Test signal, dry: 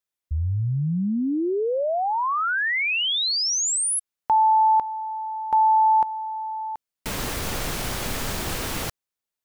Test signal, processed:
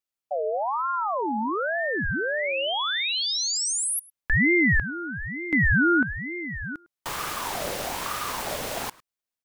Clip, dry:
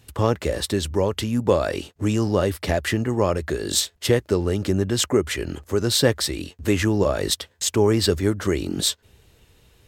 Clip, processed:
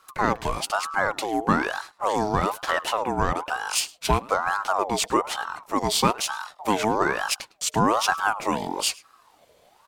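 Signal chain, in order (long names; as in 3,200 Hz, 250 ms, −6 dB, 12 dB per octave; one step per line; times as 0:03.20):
slap from a distant wall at 18 metres, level −22 dB
ring modulator whose carrier an LFO sweeps 880 Hz, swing 40%, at 1.1 Hz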